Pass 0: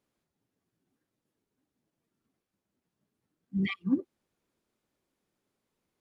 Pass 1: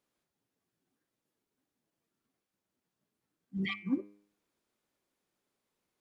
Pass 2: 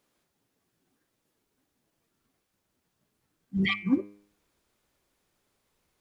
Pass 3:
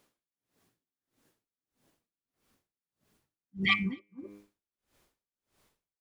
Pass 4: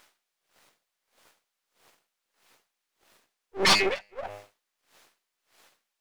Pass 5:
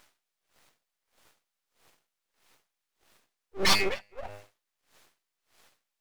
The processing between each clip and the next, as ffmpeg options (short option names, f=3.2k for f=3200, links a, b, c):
-af "lowshelf=f=340:g=-7,bandreject=f=101.9:t=h:w=4,bandreject=f=203.8:t=h:w=4,bandreject=f=305.7:t=h:w=4,bandreject=f=407.6:t=h:w=4,bandreject=f=509.5:t=h:w=4,bandreject=f=611.4:t=h:w=4,bandreject=f=713.3:t=h:w=4,bandreject=f=815.2:t=h:w=4,bandreject=f=917.1:t=h:w=4,bandreject=f=1.019k:t=h:w=4,bandreject=f=1.1209k:t=h:w=4,bandreject=f=1.2228k:t=h:w=4,bandreject=f=1.3247k:t=h:w=4,bandreject=f=1.4266k:t=h:w=4,bandreject=f=1.5285k:t=h:w=4,bandreject=f=1.6304k:t=h:w=4,bandreject=f=1.7323k:t=h:w=4,bandreject=f=1.8342k:t=h:w=4,bandreject=f=1.9361k:t=h:w=4,bandreject=f=2.038k:t=h:w=4,bandreject=f=2.1399k:t=h:w=4,bandreject=f=2.2418k:t=h:w=4,bandreject=f=2.3437k:t=h:w=4,bandreject=f=2.4456k:t=h:w=4,bandreject=f=2.5475k:t=h:w=4,bandreject=f=2.6494k:t=h:w=4,bandreject=f=2.7513k:t=h:w=4,bandreject=f=2.8532k:t=h:w=4,bandreject=f=2.9551k:t=h:w=4,bandreject=f=3.057k:t=h:w=4"
-af "asubboost=boost=3.5:cutoff=110,volume=9dB"
-filter_complex "[0:a]asplit=2[a][b];[b]aecho=0:1:257:0.562[c];[a][c]amix=inputs=2:normalize=0,aeval=exprs='val(0)*pow(10,-35*(0.5-0.5*cos(2*PI*1.6*n/s))/20)':c=same,volume=5dB"
-filter_complex "[0:a]aeval=exprs='abs(val(0))':c=same,asplit=2[a][b];[b]highpass=f=720:p=1,volume=21dB,asoftclip=type=tanh:threshold=-11.5dB[c];[a][c]amix=inputs=2:normalize=0,lowpass=f=4.6k:p=1,volume=-6dB,volume=3dB"
-af "aeval=exprs='max(val(0),0)':c=same"